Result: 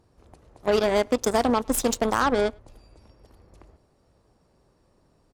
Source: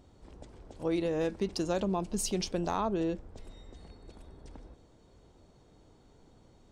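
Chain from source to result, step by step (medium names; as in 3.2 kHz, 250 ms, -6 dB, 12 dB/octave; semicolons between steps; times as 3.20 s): Chebyshev shaper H 5 -27 dB, 7 -17 dB, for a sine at -19 dBFS; speakerphone echo 130 ms, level -28 dB; tape speed +26%; trim +9 dB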